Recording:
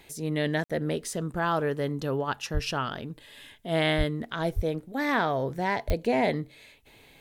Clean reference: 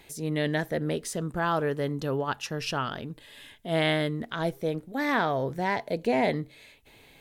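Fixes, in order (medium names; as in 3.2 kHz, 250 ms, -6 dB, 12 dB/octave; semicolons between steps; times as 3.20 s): de-click; de-plosive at 2.53/3.97/4.55/5.87 s; interpolate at 0.64 s, 56 ms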